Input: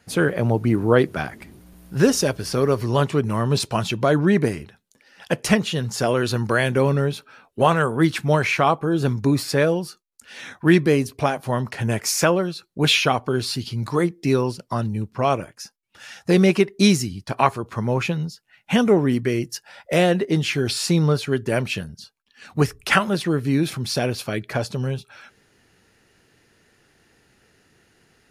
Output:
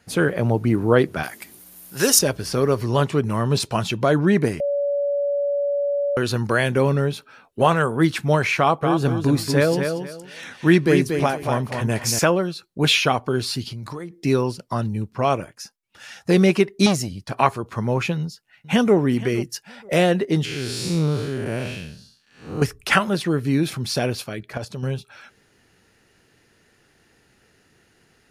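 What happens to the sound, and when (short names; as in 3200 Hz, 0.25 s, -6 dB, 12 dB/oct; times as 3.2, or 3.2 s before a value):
1.23–2.19 RIAA curve recording
4.6–6.17 bleep 570 Hz -19 dBFS
8.59–12.19 feedback echo 0.234 s, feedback 24%, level -6 dB
13.67–14.21 compressor 16:1, threshold -28 dBFS
16.86–17.34 core saturation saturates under 770 Hz
18.17–18.95 echo throw 0.47 s, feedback 25%, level -17.5 dB
20.45–22.62 time blur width 0.21 s
24.24–24.83 level quantiser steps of 10 dB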